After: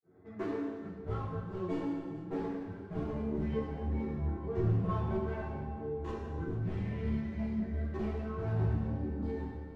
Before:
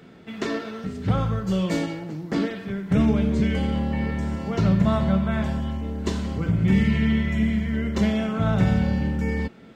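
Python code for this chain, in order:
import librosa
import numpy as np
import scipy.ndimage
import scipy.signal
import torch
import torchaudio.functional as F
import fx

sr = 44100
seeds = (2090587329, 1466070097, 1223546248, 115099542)

p1 = fx.wiener(x, sr, points=15)
p2 = scipy.signal.sosfilt(scipy.signal.butter(4, 82.0, 'highpass', fs=sr, output='sos'), p1)
p3 = fx.dereverb_blind(p2, sr, rt60_s=0.97)
p4 = fx.lowpass(p3, sr, hz=1100.0, slope=6)
p5 = p4 + 0.37 * np.pad(p4, (int(2.6 * sr / 1000.0), 0))[:len(p4)]
p6 = fx.rider(p5, sr, range_db=3, speed_s=0.5)
p7 = p5 + F.gain(torch.from_numpy(p6), 2.0).numpy()
p8 = np.clip(p7, -10.0 ** (-15.0 / 20.0), 10.0 ** (-15.0 / 20.0))
p9 = fx.granulator(p8, sr, seeds[0], grain_ms=252.0, per_s=30.0, spray_ms=27.0, spread_st=0)
p10 = fx.chorus_voices(p9, sr, voices=6, hz=0.4, base_ms=12, depth_ms=2.0, mix_pct=50)
p11 = p10 + fx.echo_feedback(p10, sr, ms=449, feedback_pct=53, wet_db=-17, dry=0)
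p12 = fx.rev_gated(p11, sr, seeds[1], gate_ms=470, shape='falling', drr_db=-2.5)
y = F.gain(torch.from_numpy(p12), -8.0).numpy()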